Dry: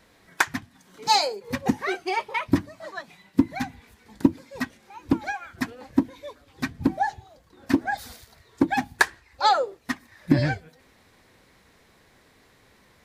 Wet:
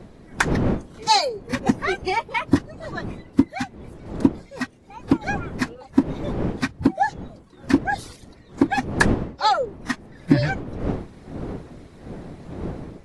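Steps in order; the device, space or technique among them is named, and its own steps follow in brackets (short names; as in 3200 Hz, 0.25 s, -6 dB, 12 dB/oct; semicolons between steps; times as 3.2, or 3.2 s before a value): reverb removal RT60 0.62 s; smartphone video outdoors (wind noise 310 Hz -33 dBFS; AGC gain up to 4.5 dB; AAC 48 kbps 24000 Hz)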